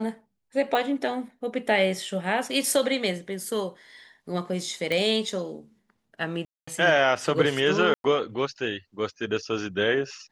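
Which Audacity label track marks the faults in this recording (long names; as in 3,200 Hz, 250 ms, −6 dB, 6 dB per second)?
0.750000	0.750000	click −15 dBFS
4.920000	4.920000	click −15 dBFS
6.450000	6.670000	drop-out 225 ms
7.940000	8.040000	drop-out 102 ms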